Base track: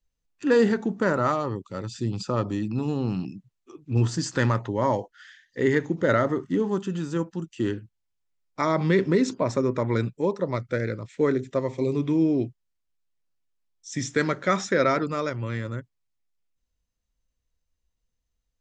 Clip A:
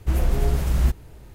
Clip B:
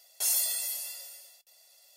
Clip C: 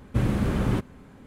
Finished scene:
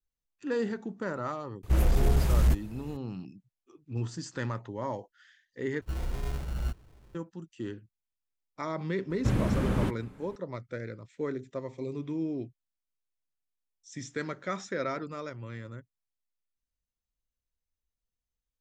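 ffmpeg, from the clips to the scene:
-filter_complex "[1:a]asplit=2[a][b];[0:a]volume=-11dB[c];[a]asoftclip=type=hard:threshold=-15dB[d];[b]acrusher=samples=31:mix=1:aa=0.000001[e];[c]asplit=2[f][g];[f]atrim=end=5.814[h];[e]atrim=end=1.34,asetpts=PTS-STARTPTS,volume=-12.5dB[i];[g]atrim=start=7.146[j];[d]atrim=end=1.34,asetpts=PTS-STARTPTS,volume=-2dB,afade=t=in:d=0.004:c=hsin,afade=t=out:st=1.336:d=0.004:c=hsin,adelay=1630[k];[3:a]atrim=end=1.26,asetpts=PTS-STARTPTS,volume=-3dB,afade=t=in:d=0.004:c=hsin,afade=t=out:st=1.256:d=0.004:c=hsin,adelay=9100[l];[h][i]acrossfade=d=0.004:c1=hsin:c2=hsin[m];[m][j]acrossfade=d=0.004:c1=hsin:c2=hsin[n];[n][k][l]amix=inputs=3:normalize=0"

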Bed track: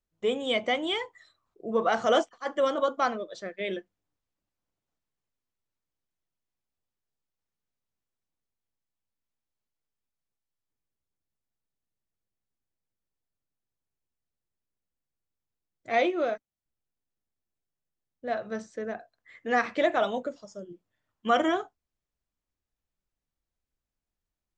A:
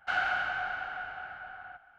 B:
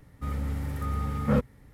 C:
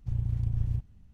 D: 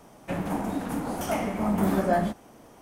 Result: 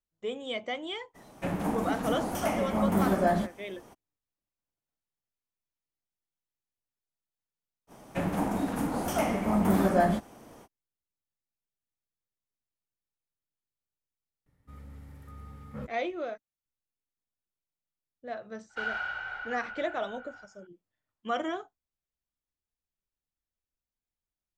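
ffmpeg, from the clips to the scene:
-filter_complex "[4:a]asplit=2[a][b];[0:a]volume=-7.5dB[c];[1:a]aecho=1:1:2.1:0.67[d];[a]atrim=end=2.81,asetpts=PTS-STARTPTS,volume=-1.5dB,afade=t=in:d=0.02,afade=t=out:st=2.79:d=0.02,adelay=1140[e];[b]atrim=end=2.81,asetpts=PTS-STARTPTS,afade=t=in:d=0.05,afade=t=out:st=2.76:d=0.05,adelay=7870[f];[2:a]atrim=end=1.73,asetpts=PTS-STARTPTS,volume=-16.5dB,afade=t=in:d=0.004:c=hsin,afade=t=out:st=1.726:d=0.004:c=hsin,adelay=14460[g];[d]atrim=end=1.98,asetpts=PTS-STARTPTS,volume=-6.5dB,afade=t=in:d=0.004:c=hsin,afade=t=out:st=1.976:d=0.004:c=hsin,adelay=18690[h];[c][e][f][g][h]amix=inputs=5:normalize=0"

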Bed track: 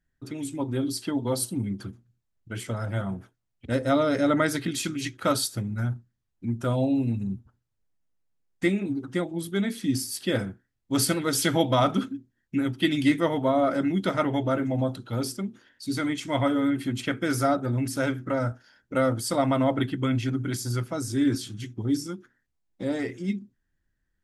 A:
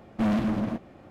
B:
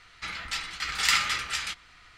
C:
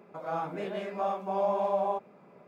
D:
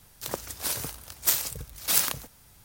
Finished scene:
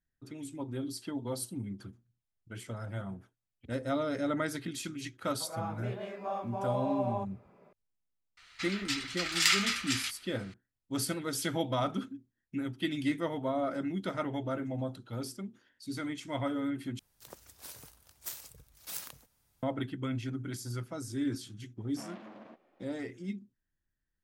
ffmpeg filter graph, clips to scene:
-filter_complex "[0:a]volume=-9.5dB[a];[2:a]tiltshelf=f=1.2k:g=-6[b];[1:a]highpass=390,lowpass=4.5k[c];[a]asplit=2[d][e];[d]atrim=end=16.994[f];[4:a]atrim=end=2.64,asetpts=PTS-STARTPTS,volume=-17.5dB[g];[e]atrim=start=19.626[h];[3:a]atrim=end=2.47,asetpts=PTS-STARTPTS,volume=-5.5dB,afade=t=in:d=0.004:c=hsin,afade=t=out:st=2.466:d=0.004:c=hsin,adelay=5260[i];[b]atrim=end=2.17,asetpts=PTS-STARTPTS,volume=-6.5dB,afade=t=in:d=0.004:c=hsin,afade=t=out:st=2.166:d=0.004:c=hsin,adelay=8370[j];[c]atrim=end=1.1,asetpts=PTS-STARTPTS,volume=-15.5dB,afade=t=in:d=0.004:c=hsin,afade=t=out:st=1.096:d=0.004:c=hsin,adelay=21780[k];[f][g]acrossfade=d=0.004:c1=hsin:c2=hsin[l];[l][h]acrossfade=d=0.004:c1=hsin:c2=hsin[m];[m][i][j][k]amix=inputs=4:normalize=0"

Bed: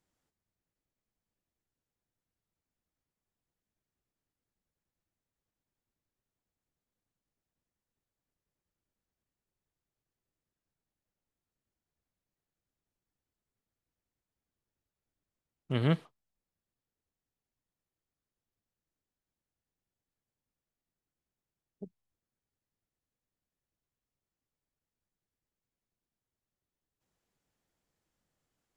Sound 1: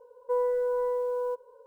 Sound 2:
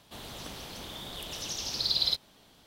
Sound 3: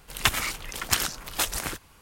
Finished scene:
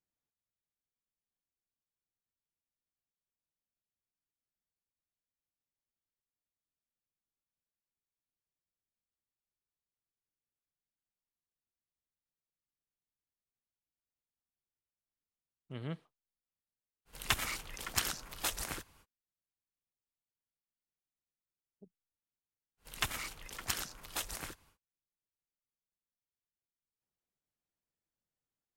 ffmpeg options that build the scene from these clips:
-filter_complex "[3:a]asplit=2[a][b];[0:a]volume=-13.5dB[c];[a]atrim=end=2.01,asetpts=PTS-STARTPTS,volume=-9dB,afade=t=in:d=0.05,afade=t=out:st=1.96:d=0.05,adelay=17050[d];[b]atrim=end=2.01,asetpts=PTS-STARTPTS,volume=-12dB,afade=t=in:d=0.1,afade=t=out:st=1.91:d=0.1,adelay=22770[e];[c][d][e]amix=inputs=3:normalize=0"

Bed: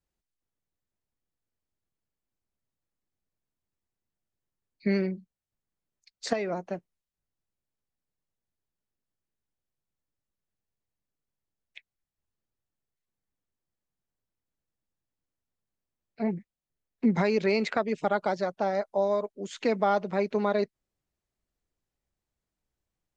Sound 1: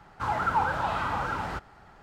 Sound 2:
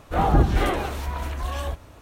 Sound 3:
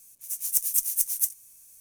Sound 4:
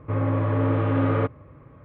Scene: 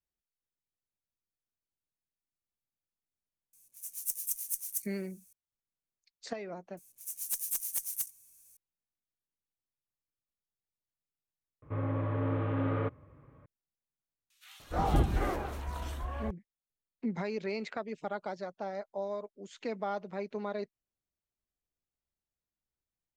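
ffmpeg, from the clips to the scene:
-filter_complex "[3:a]asplit=2[a][b];[0:a]volume=-10.5dB[c];[b]asoftclip=type=hard:threshold=-18dB[d];[2:a]acrossover=split=2500[e][f];[e]adelay=300[g];[g][f]amix=inputs=2:normalize=0[h];[c]asplit=2[i][j];[i]atrim=end=11.624[k];[4:a]atrim=end=1.84,asetpts=PTS-STARTPTS,volume=-9.5dB[l];[j]atrim=start=13.456[m];[a]atrim=end=1.8,asetpts=PTS-STARTPTS,volume=-10.5dB,afade=t=in:d=0.004:c=hsin,afade=t=out:st=1.796:d=0.004:c=hsin,adelay=155673S[n];[d]atrim=end=1.8,asetpts=PTS-STARTPTS,volume=-8dB,afade=t=in:d=0.004:c=hsin,afade=t=out:st=1.796:d=0.004:c=hsin,adelay=6770[o];[h]atrim=end=2.01,asetpts=PTS-STARTPTS,volume=-9dB,afade=t=in:d=0.004:c=hsin,afade=t=out:st=2.006:d=0.004:c=hsin,adelay=14300[p];[k][l]acrossfade=d=0.004:c1=hsin:c2=hsin[q];[q][m]acrossfade=d=0.004:c1=hsin:c2=hsin[r];[r][n][o][p]amix=inputs=4:normalize=0"

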